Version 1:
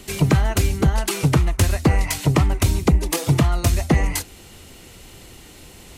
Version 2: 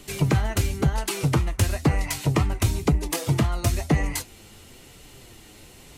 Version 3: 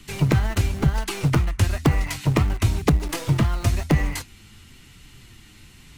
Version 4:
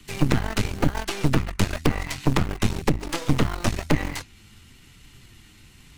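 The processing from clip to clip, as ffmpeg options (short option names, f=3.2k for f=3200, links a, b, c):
-af "flanger=delay=6.7:depth=2.8:regen=59:speed=1:shape=sinusoidal"
-filter_complex "[0:a]highshelf=f=5.2k:g=-9,acrossover=split=300|1000[a][b][c];[b]acrusher=bits=4:dc=4:mix=0:aa=0.000001[d];[a][d][c]amix=inputs=3:normalize=0,volume=2.5dB"
-filter_complex "[0:a]acrossover=split=110|7300[a][b][c];[a]acompressor=threshold=-30dB:ratio=4[d];[b]acompressor=threshold=-20dB:ratio=4[e];[c]acompressor=threshold=-46dB:ratio=4[f];[d][e][f]amix=inputs=3:normalize=0,aeval=exprs='0.531*(cos(1*acos(clip(val(0)/0.531,-1,1)))-cos(1*PI/2))+0.211*(cos(6*acos(clip(val(0)/0.531,-1,1)))-cos(6*PI/2))':c=same,volume=-2.5dB"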